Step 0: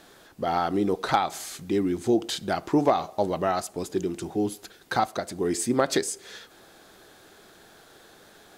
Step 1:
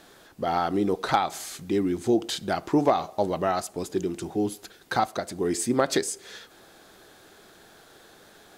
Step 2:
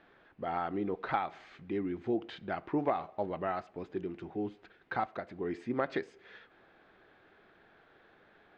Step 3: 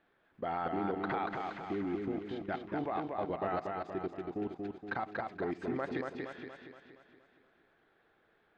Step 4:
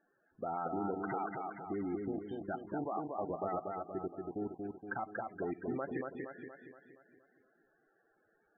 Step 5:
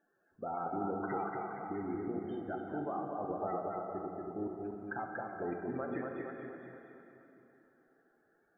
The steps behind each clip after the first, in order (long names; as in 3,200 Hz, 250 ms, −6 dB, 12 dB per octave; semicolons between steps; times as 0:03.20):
no processing that can be heard
transistor ladder low-pass 2,900 Hz, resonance 30%; level −3 dB
output level in coarse steps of 19 dB; feedback echo with a swinging delay time 235 ms, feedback 52%, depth 51 cents, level −3.5 dB; level +3 dB
spectral peaks only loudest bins 32; level −2 dB
dense smooth reverb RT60 3.2 s, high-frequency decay 0.8×, DRR 2.5 dB; level −1.5 dB